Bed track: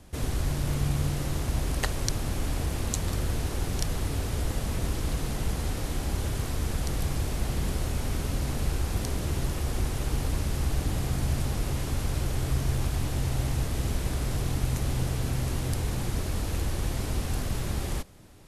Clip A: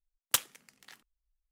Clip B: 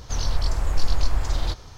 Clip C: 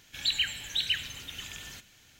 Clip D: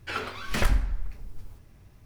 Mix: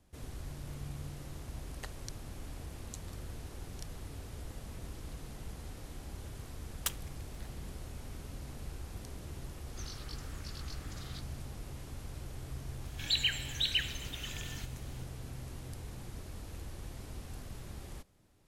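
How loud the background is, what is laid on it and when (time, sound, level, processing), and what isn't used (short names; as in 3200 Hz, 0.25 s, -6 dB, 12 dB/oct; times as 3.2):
bed track -15.5 dB
6.52 add A -8 dB
9.67 add B -13.5 dB + elliptic high-pass 1200 Hz
12.85 add C -2.5 dB
not used: D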